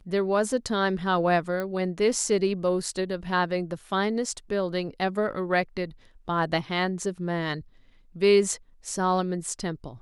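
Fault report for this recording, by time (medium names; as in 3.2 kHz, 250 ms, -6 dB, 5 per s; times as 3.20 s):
1.60 s: pop -18 dBFS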